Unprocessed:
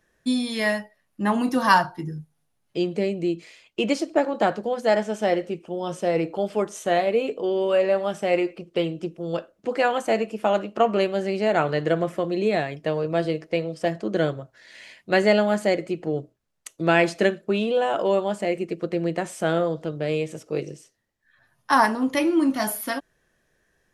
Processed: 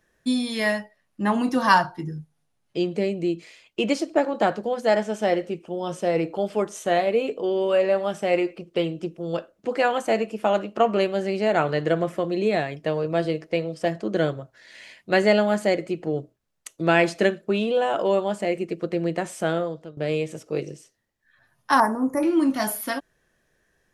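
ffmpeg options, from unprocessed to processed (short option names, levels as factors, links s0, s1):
-filter_complex "[0:a]asettb=1/sr,asplit=3[s0][s1][s2];[s0]atrim=end=0.724[s3];[s1]atrim=start=0.72:end=2.94,asetpts=PTS-STARTPTS,afade=t=in:d=0.004:c=qsin,afade=t=out:st=2.216:d=0.004:c=qsin,lowpass=10000[s4];[s2]atrim=start=2.936[s5];[s3][s4]acrossfade=d=0.004:c1=hsin:c2=qsin[s6];[s6][s5]acrossfade=d=0.004:c1=qsin:c2=hsin,asettb=1/sr,asplit=3[s7][s8][s9];[s7]atrim=end=21.804[s10];[s8]atrim=start=21.8:end=22.23,asetpts=PTS-STARTPTS,afade=t=in:d=0.004:c=qsin,afade=t=out:st=0.426:d=0.004:c=qsin,asuperstop=centerf=3400:order=4:qfactor=0.51[s11];[s9]atrim=start=22.226[s12];[s10][s11]acrossfade=d=0.004:c1=hsin:c2=qsin[s13];[s13][s12]acrossfade=d=0.004:c1=qsin:c2=hsin,asplit=2[s14][s15];[s14]atrim=end=19.97,asetpts=PTS-STARTPTS,afade=t=out:st=19.4:d=0.57:silence=0.16788[s16];[s15]atrim=start=19.97,asetpts=PTS-STARTPTS,afade=t=in:d=0.004:c=hsin:silence=0.16788[s17];[s16][s17]concat=n=2:v=0:a=1"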